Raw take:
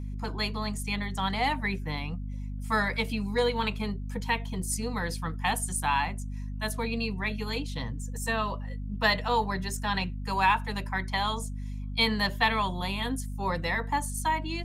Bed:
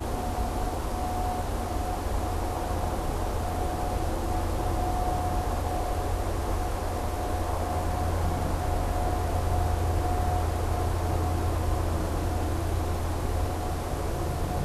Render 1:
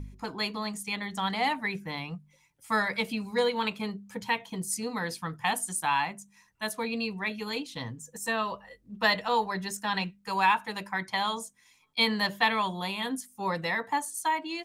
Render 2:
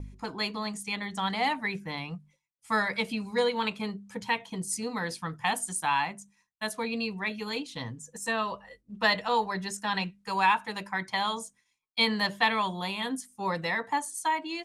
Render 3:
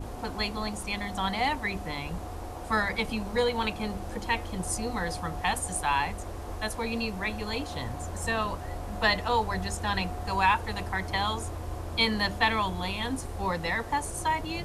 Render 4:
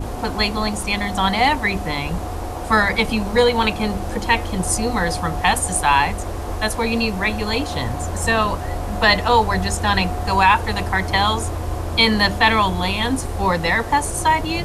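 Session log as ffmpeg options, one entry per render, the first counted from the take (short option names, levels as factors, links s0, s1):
-af "bandreject=f=50:t=h:w=4,bandreject=f=100:t=h:w=4,bandreject=f=150:t=h:w=4,bandreject=f=200:t=h:w=4,bandreject=f=250:t=h:w=4"
-af "lowpass=f=11000:w=0.5412,lowpass=f=11000:w=1.3066,agate=range=0.0224:threshold=0.00316:ratio=3:detection=peak"
-filter_complex "[1:a]volume=0.355[s0];[0:a][s0]amix=inputs=2:normalize=0"
-af "volume=3.55,alimiter=limit=0.708:level=0:latency=1"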